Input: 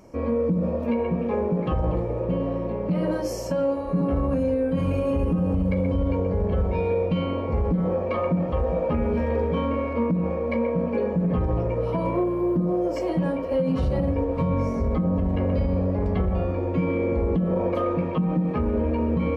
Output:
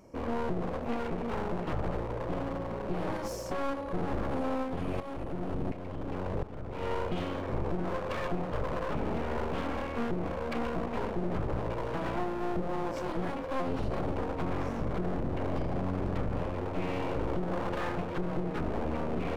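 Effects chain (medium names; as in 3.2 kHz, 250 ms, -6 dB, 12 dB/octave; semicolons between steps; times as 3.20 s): one-sided wavefolder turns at -28.5 dBFS; 4.62–6.81 s: tremolo saw up 1.4 Hz, depth 60% -> 85%; trim -6 dB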